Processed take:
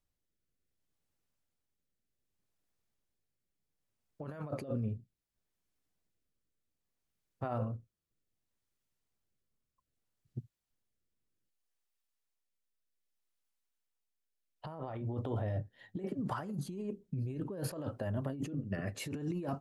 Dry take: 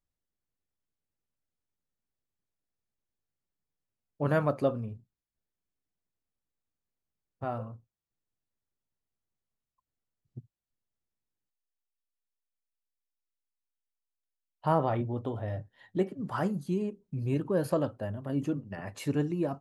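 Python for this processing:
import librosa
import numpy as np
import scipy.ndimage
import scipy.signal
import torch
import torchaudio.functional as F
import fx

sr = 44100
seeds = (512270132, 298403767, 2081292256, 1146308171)

y = fx.rotary(x, sr, hz=0.65)
y = fx.over_compress(y, sr, threshold_db=-38.0, ratio=-1.0)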